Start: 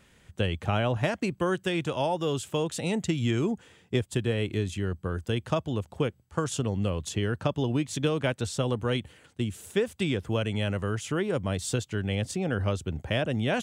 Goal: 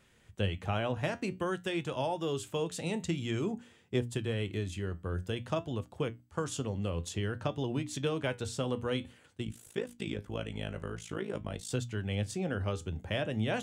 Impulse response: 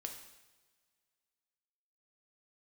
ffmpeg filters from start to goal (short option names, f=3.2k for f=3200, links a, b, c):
-filter_complex "[0:a]bandreject=f=60:t=h:w=6,bandreject=f=120:t=h:w=6,bandreject=f=180:t=h:w=6,bandreject=f=240:t=h:w=6,bandreject=f=300:t=h:w=6,asplit=3[a][b][c];[a]afade=t=out:st=9.44:d=0.02[d];[b]tremolo=f=54:d=0.947,afade=t=in:st=9.44:d=0.02,afade=t=out:st=11.69:d=0.02[e];[c]afade=t=in:st=11.69:d=0.02[f];[d][e][f]amix=inputs=3:normalize=0,flanger=delay=7.7:depth=4.8:regen=72:speed=0.51:shape=triangular,volume=-1dB"